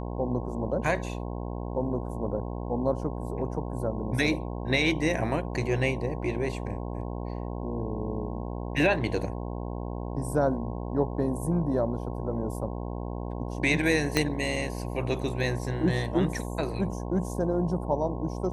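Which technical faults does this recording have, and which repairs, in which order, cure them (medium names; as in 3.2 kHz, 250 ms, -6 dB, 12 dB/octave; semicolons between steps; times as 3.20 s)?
buzz 60 Hz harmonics 18 -34 dBFS
14.17 s: pop -9 dBFS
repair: de-click; de-hum 60 Hz, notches 18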